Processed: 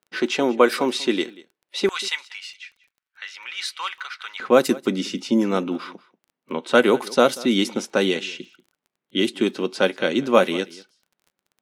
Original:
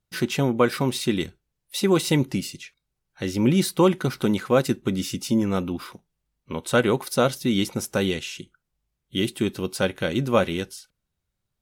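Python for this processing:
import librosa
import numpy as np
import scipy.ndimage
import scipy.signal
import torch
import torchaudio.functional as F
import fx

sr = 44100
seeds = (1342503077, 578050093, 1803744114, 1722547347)

y = fx.highpass(x, sr, hz=fx.steps((0.0, 270.0), (1.89, 1300.0), (4.4, 220.0)), slope=24)
y = fx.env_lowpass(y, sr, base_hz=2400.0, full_db=-17.0)
y = fx.dmg_crackle(y, sr, seeds[0], per_s=15.0, level_db=-47.0)
y = y + 10.0 ** (-21.0 / 20.0) * np.pad(y, (int(187 * sr / 1000.0), 0))[:len(y)]
y = y * 10.0 ** (4.5 / 20.0)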